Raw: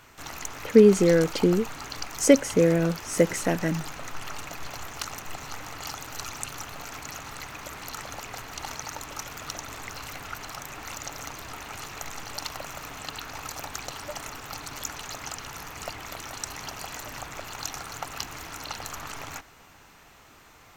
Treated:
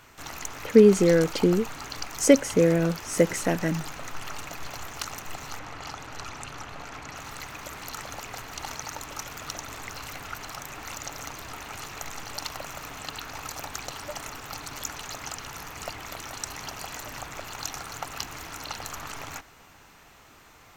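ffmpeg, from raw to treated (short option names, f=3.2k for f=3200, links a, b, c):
-filter_complex "[0:a]asettb=1/sr,asplit=3[a][b][c];[a]atrim=end=5.594[d];[b]atrim=start=5.59:end=7.17,asetpts=PTS-STARTPTS,afade=t=in:d=0.004:c=qsin,afade=t=out:st=1.576:d=0.004:c=qsin,aemphasis=mode=reproduction:type=50fm[e];[c]atrim=start=7.166[f];[d][e]acrossfade=d=0.004:c1=hsin:c2=qsin[g];[g][f]acrossfade=d=0.004:c1=qsin:c2=hsin"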